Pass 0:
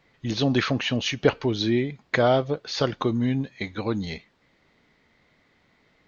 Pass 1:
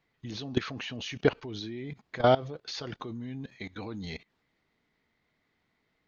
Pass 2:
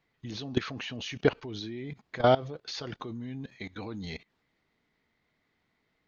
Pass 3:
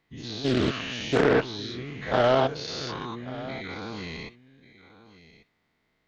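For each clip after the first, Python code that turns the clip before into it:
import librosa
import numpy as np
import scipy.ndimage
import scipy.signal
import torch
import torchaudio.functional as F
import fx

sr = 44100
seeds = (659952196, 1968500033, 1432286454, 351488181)

y1 = fx.notch(x, sr, hz=550.0, q=12.0)
y1 = fx.level_steps(y1, sr, step_db=19)
y2 = y1
y3 = fx.spec_dilate(y2, sr, span_ms=240)
y3 = y3 + 10.0 ** (-17.0 / 20.0) * np.pad(y3, (int(1140 * sr / 1000.0), 0))[:len(y3)]
y3 = fx.doppler_dist(y3, sr, depth_ms=0.34)
y3 = y3 * 10.0 ** (-3.0 / 20.0)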